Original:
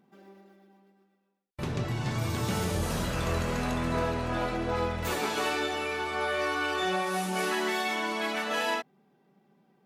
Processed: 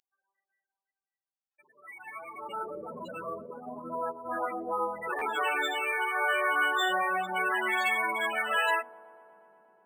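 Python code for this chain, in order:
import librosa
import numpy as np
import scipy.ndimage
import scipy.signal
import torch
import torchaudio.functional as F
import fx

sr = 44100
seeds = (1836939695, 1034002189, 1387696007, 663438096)

p1 = fx.hum_notches(x, sr, base_hz=60, count=5)
p2 = fx.level_steps(p1, sr, step_db=10, at=(3.33, 4.25))
p3 = fx.spec_topn(p2, sr, count=16)
p4 = fx.filter_sweep_highpass(p3, sr, from_hz=2500.0, to_hz=230.0, start_s=1.5, end_s=2.99, q=0.91)
p5 = fx.dynamic_eq(p4, sr, hz=1300.0, q=0.79, threshold_db=-46.0, ratio=4.0, max_db=5)
p6 = p5 + fx.echo_wet_bandpass(p5, sr, ms=120, feedback_pct=80, hz=470.0, wet_db=-21.0, dry=0)
p7 = fx.noise_reduce_blind(p6, sr, reduce_db=8)
p8 = fx.tilt_eq(p7, sr, slope=4.0)
p9 = fx.buffer_glitch(p8, sr, at_s=(5.18,), block=512, repeats=2)
y = np.interp(np.arange(len(p9)), np.arange(len(p9))[::4], p9[::4])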